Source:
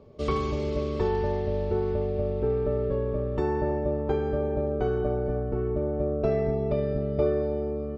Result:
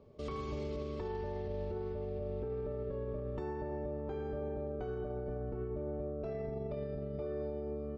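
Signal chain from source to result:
brickwall limiter −24 dBFS, peak gain reduction 11 dB
level −7.5 dB

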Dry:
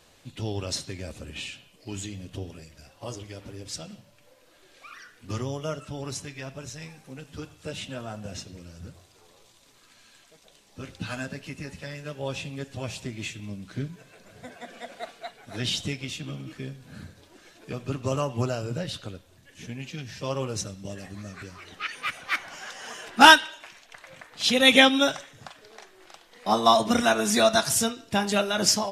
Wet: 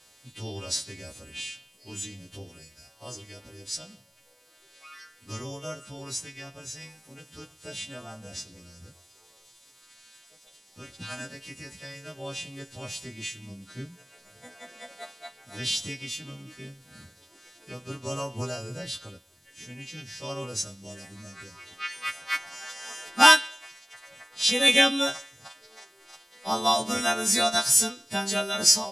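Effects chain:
every partial snapped to a pitch grid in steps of 2 semitones
0:16.31–0:17.05: surface crackle 91 per second −54 dBFS
level −5 dB

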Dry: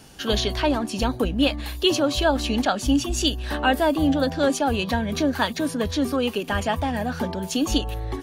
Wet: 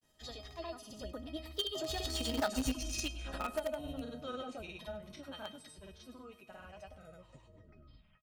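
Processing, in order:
turntable brake at the end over 1.40 s
source passing by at 0:02.56, 32 m/s, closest 4.1 metres
granular cloud, pitch spread up and down by 0 semitones
tuned comb filter 630 Hz, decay 0.18 s, harmonics all, mix 90%
on a send: repeating echo 101 ms, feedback 44%, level −17 dB
on the sum: downward compressor 4 to 1, threshold −53 dBFS, peak gain reduction 16 dB
in parallel at −10 dB: bit reduction 8 bits
on the sum: level +18 dB

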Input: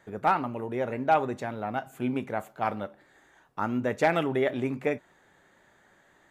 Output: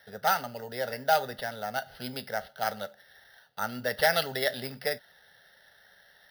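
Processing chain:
meter weighting curve D
decimation without filtering 6×
phaser with its sweep stopped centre 1,600 Hz, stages 8

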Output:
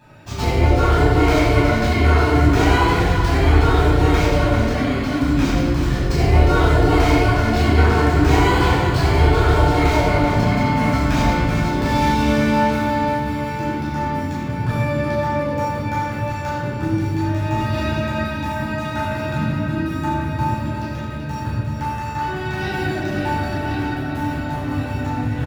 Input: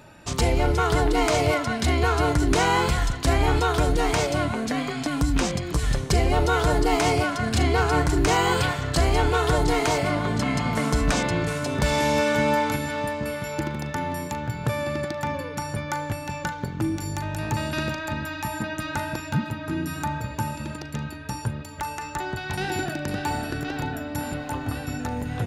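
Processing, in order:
running median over 5 samples
single-tap delay 383 ms −8.5 dB
convolution reverb RT60 1.5 s, pre-delay 9 ms, DRR −10 dB
level −9.5 dB

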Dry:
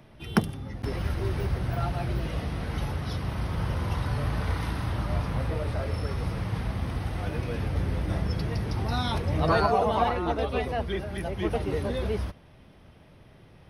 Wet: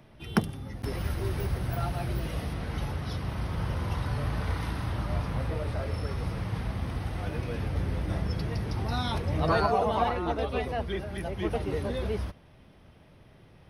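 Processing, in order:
0:00.54–0:02.54: high-shelf EQ 9,600 Hz +12 dB
level −2 dB

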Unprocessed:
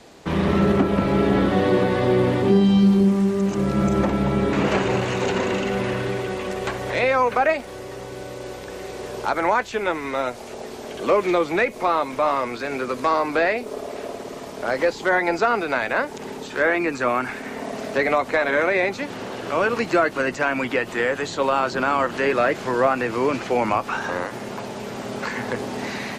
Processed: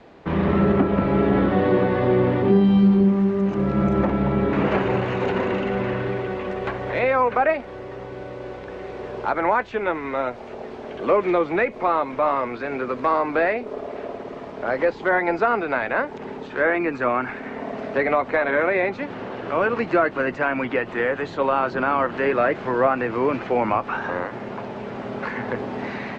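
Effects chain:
low-pass filter 2,300 Hz 12 dB per octave

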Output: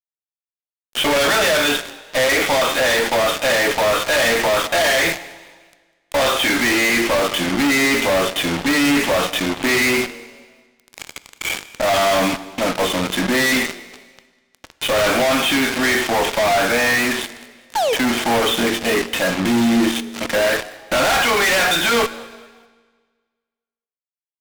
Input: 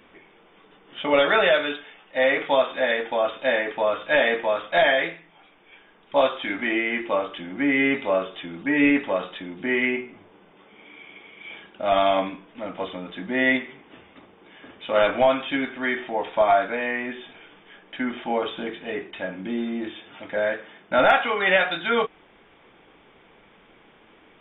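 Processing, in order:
sound drawn into the spectrogram fall, 0:17.75–0:17.95, 410–940 Hz −32 dBFS
high-shelf EQ 2,300 Hz +5 dB
fuzz pedal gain 44 dB, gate −36 dBFS
echo with shifted repeats 199 ms, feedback 41%, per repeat +92 Hz, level −23.5 dB
on a send at −15 dB: convolution reverb RT60 1.6 s, pre-delay 17 ms
on the sum: level −2 dB

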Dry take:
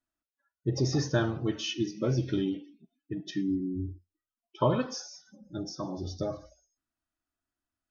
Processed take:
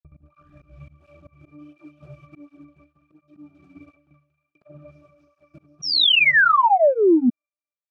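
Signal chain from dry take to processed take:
turntable start at the beginning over 1.66 s
tape delay 191 ms, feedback 87%, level −15.5 dB, low-pass 4,800 Hz
log-companded quantiser 2 bits
on a send: delay with a high-pass on its return 272 ms, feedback 40%, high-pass 1,500 Hz, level −5 dB
on the sum: wrap-around overflow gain 23.5 dB
resonances in every octave D, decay 0.58 s
sound drawn into the spectrogram fall, 0:05.82–0:07.30, 230–5,800 Hz −15 dBFS
transient designer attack +8 dB, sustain −5 dB
in parallel at −2 dB: brickwall limiter −15 dBFS, peak gain reduction 11.5 dB
on the sum: volume swells 215 ms
through-zero flanger with one copy inverted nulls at 1.4 Hz, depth 4.4 ms
level −1.5 dB

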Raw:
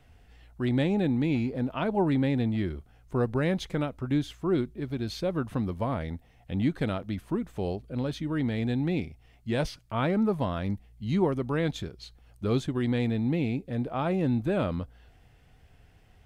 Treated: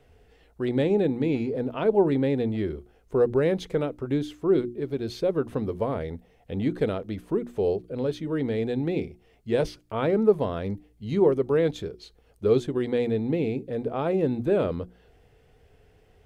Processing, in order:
parametric band 440 Hz +13 dB 0.64 octaves
mains-hum notches 60/120/180/240/300/360 Hz
level −1.5 dB

